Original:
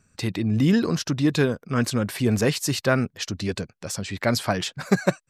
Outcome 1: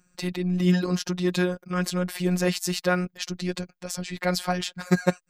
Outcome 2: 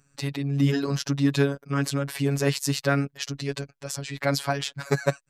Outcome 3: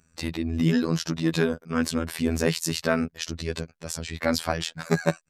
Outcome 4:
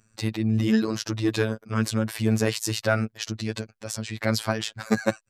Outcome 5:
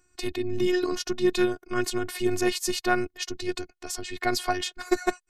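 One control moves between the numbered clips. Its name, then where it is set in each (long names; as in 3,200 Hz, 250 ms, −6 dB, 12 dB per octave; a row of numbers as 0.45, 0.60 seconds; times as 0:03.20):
phases set to zero, frequency: 180, 140, 82, 110, 360 Hertz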